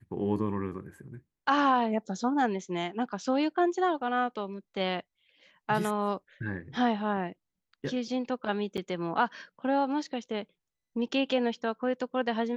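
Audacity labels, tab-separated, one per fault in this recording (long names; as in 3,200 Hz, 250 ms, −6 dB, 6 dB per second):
8.770000	8.780000	drop-out 7.6 ms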